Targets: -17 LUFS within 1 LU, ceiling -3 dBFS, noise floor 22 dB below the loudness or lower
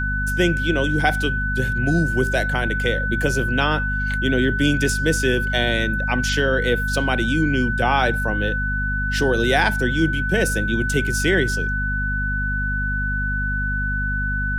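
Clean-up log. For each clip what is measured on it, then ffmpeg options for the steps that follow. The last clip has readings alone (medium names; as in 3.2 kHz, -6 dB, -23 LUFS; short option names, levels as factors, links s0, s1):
hum 50 Hz; highest harmonic 250 Hz; hum level -22 dBFS; steady tone 1.5 kHz; tone level -23 dBFS; loudness -20.5 LUFS; peak level -5.5 dBFS; loudness target -17.0 LUFS
-> -af "bandreject=f=50:t=h:w=4,bandreject=f=100:t=h:w=4,bandreject=f=150:t=h:w=4,bandreject=f=200:t=h:w=4,bandreject=f=250:t=h:w=4"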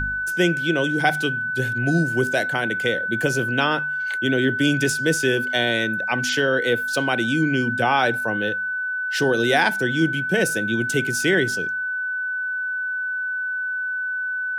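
hum not found; steady tone 1.5 kHz; tone level -23 dBFS
-> -af "bandreject=f=1500:w=30"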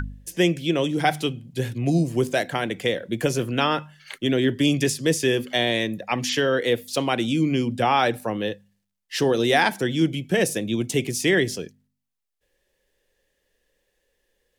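steady tone not found; loudness -23.0 LUFS; peak level -7.0 dBFS; loudness target -17.0 LUFS
-> -af "volume=2,alimiter=limit=0.708:level=0:latency=1"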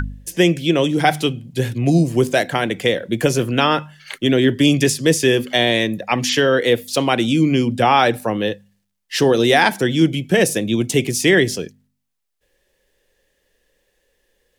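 loudness -17.0 LUFS; peak level -3.0 dBFS; noise floor -72 dBFS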